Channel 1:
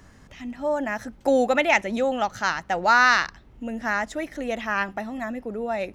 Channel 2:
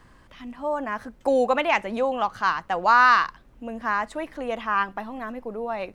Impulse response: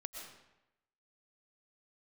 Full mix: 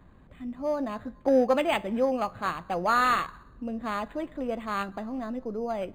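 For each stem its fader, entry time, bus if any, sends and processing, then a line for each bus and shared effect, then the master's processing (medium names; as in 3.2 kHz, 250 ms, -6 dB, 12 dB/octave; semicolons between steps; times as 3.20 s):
-1.5 dB, 0.00 s, no send, local Wiener filter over 25 samples
-4.5 dB, 0.00 s, send -16 dB, none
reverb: on, RT60 0.90 s, pre-delay 80 ms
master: feedback comb 87 Hz, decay 0.23 s, harmonics all, mix 40%; decimation joined by straight lines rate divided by 8×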